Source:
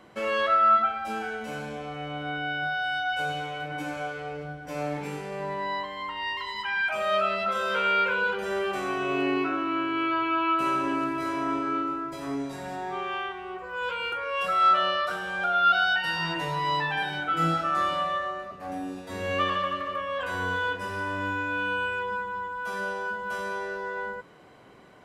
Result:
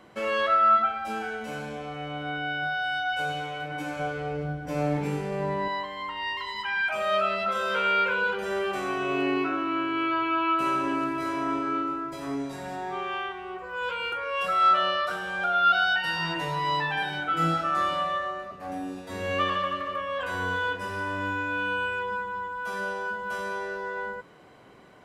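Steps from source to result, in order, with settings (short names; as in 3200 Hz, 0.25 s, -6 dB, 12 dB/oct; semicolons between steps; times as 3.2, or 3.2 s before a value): 3.99–5.68 low shelf 430 Hz +9 dB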